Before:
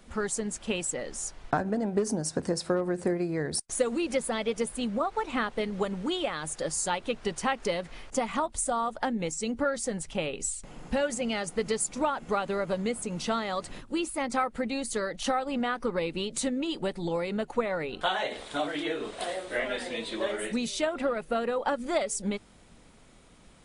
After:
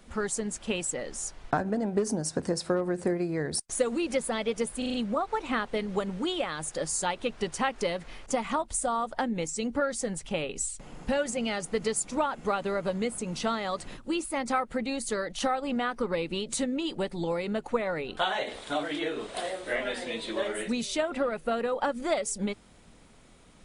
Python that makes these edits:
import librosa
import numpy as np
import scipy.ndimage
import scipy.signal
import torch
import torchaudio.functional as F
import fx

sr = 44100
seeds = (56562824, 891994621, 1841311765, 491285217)

y = fx.edit(x, sr, fx.stutter(start_s=4.78, slice_s=0.04, count=5), tone=tone)